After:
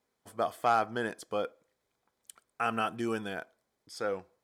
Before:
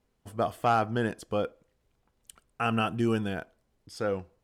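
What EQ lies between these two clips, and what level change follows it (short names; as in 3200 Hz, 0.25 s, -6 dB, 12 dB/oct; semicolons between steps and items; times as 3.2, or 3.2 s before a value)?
HPF 530 Hz 6 dB/oct; notch 2800 Hz, Q 6.6; 0.0 dB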